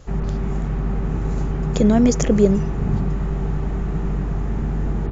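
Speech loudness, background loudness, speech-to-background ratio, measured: -17.5 LUFS, -24.5 LUFS, 7.0 dB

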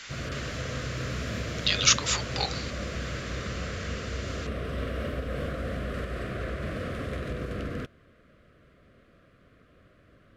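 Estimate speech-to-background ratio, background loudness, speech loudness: 6.5 dB, -34.5 LUFS, -28.0 LUFS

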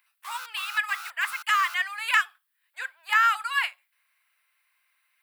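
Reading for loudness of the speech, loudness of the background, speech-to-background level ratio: -25.5 LUFS, -40.0 LUFS, 14.5 dB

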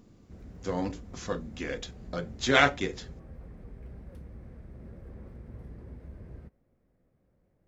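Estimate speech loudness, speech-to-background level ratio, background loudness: -29.5 LUFS, 18.5 dB, -48.0 LUFS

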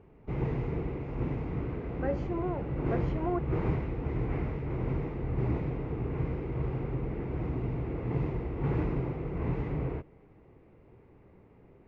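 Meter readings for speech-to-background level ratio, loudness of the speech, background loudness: -3.0 dB, -36.5 LUFS, -33.5 LUFS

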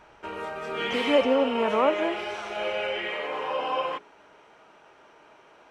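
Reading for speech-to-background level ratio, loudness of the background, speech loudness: 4.5 dB, -30.0 LUFS, -25.5 LUFS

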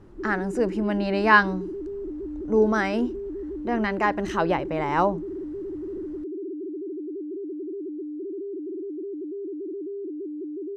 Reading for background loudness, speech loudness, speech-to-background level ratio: -34.0 LUFS, -24.0 LUFS, 10.0 dB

